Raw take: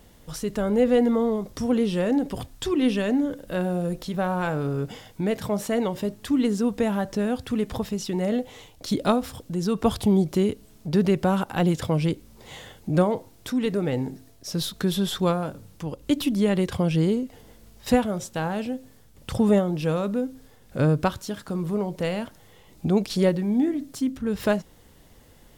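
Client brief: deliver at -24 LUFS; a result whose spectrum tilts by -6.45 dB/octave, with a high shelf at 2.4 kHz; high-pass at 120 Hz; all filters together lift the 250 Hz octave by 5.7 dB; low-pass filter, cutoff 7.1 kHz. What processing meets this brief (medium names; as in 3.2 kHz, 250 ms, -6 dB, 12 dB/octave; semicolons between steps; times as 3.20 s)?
high-pass 120 Hz; low-pass 7.1 kHz; peaking EQ 250 Hz +7.5 dB; treble shelf 2.4 kHz +6 dB; trim -3 dB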